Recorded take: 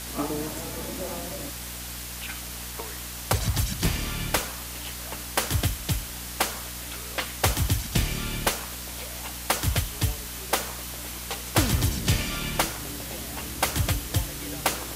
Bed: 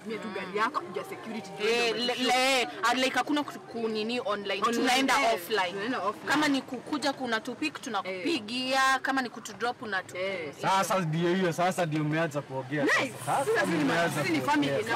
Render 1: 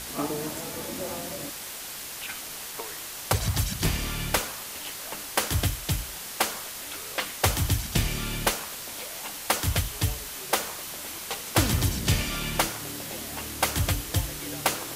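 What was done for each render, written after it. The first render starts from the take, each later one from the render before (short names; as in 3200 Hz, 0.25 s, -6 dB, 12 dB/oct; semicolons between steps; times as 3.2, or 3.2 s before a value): notches 60/120/180/240/300 Hz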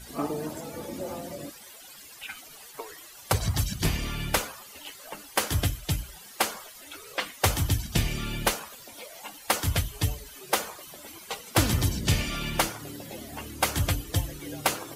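denoiser 15 dB, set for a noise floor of -38 dBFS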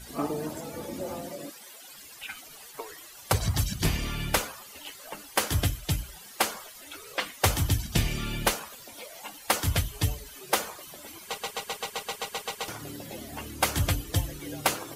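1.29–1.91 HPF 190 Hz; 11.25 stutter in place 0.13 s, 11 plays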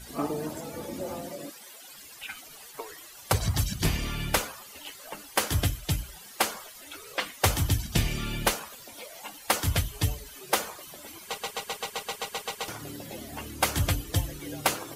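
nothing audible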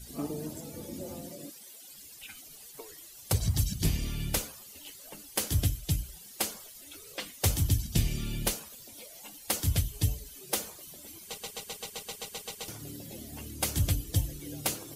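bell 1200 Hz -13.5 dB 2.6 oct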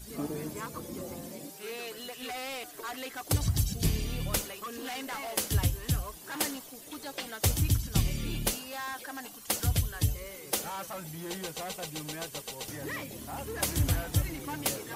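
add bed -13.5 dB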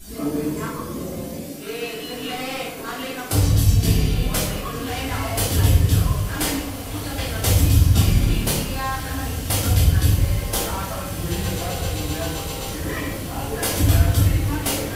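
diffused feedback echo 1.82 s, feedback 60%, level -10 dB; shoebox room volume 280 m³, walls mixed, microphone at 3 m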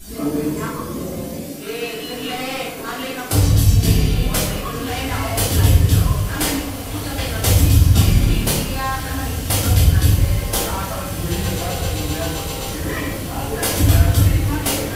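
gain +3 dB; limiter -2 dBFS, peak gain reduction 1 dB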